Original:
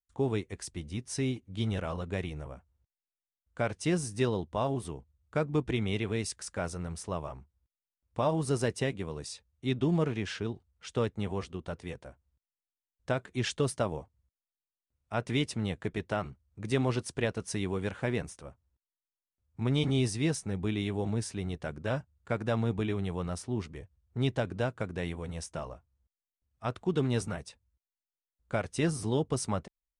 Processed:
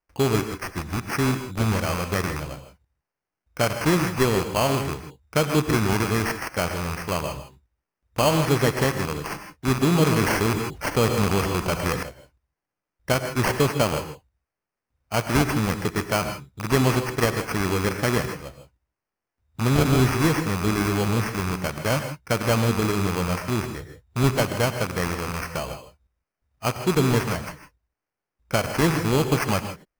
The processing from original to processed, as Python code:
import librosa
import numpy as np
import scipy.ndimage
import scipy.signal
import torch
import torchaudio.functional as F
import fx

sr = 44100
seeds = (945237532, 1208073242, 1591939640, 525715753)

y = fx.rattle_buzz(x, sr, strikes_db=-36.0, level_db=-30.0)
y = scipy.signal.sosfilt(scipy.signal.butter(2, 5100.0, 'lowpass', fs=sr, output='sos'), y)
y = fx.high_shelf(y, sr, hz=2900.0, db=10.5)
y = fx.sample_hold(y, sr, seeds[0], rate_hz=3700.0, jitter_pct=0)
y = fx.rev_gated(y, sr, seeds[1], gate_ms=180, shape='rising', drr_db=8.0)
y = fx.env_flatten(y, sr, amount_pct=50, at=(10.03, 12.03))
y = y * librosa.db_to_amplitude(7.5)